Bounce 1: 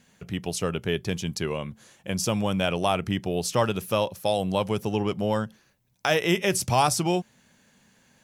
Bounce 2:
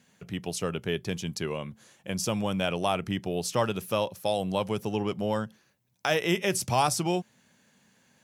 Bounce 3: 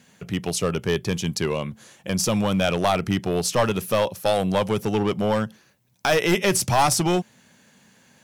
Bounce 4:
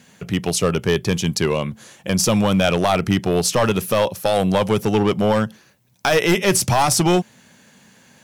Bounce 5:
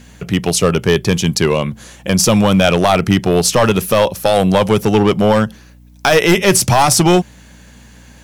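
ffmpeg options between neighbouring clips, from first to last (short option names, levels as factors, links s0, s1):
-af "highpass=89,volume=0.708"
-af "aeval=exprs='clip(val(0),-1,0.0596)':c=same,volume=2.51"
-af "alimiter=level_in=3.55:limit=0.891:release=50:level=0:latency=1,volume=0.501"
-af "aeval=exprs='val(0)+0.00447*(sin(2*PI*60*n/s)+sin(2*PI*2*60*n/s)/2+sin(2*PI*3*60*n/s)/3+sin(2*PI*4*60*n/s)/4+sin(2*PI*5*60*n/s)/5)':c=same,volume=1.88"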